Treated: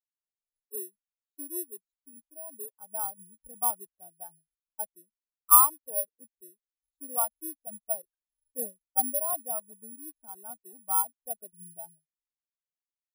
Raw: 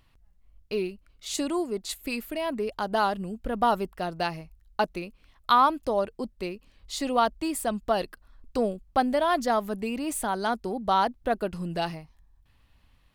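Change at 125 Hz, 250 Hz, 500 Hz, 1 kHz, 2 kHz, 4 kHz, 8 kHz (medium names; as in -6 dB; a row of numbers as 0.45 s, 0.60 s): under -25 dB, -18.5 dB, -14.5 dB, -8.0 dB, under -25 dB, under -40 dB, +9.5 dB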